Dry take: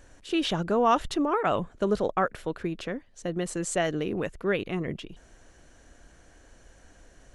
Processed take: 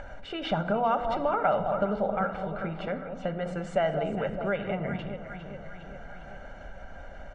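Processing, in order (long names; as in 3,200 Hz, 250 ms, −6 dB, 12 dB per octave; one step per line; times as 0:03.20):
0:02.16–0:02.57: parametric band 720 Hz −11 dB 2 octaves
delay that swaps between a low-pass and a high-pass 202 ms, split 940 Hz, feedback 66%, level −8.5 dB
rectangular room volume 2,900 cubic metres, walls furnished, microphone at 1.2 metres
upward compression, threshold −33 dBFS
low-pass filter 1,600 Hz 12 dB per octave
low-shelf EQ 220 Hz −9 dB
downward compressor 3 to 1, threshold −29 dBFS, peak gain reduction 9 dB
mains-hum notches 60/120/180/240/300/360/420/480 Hz
comb filter 1.4 ms, depth 72%
level +4.5 dB
AAC 48 kbit/s 48,000 Hz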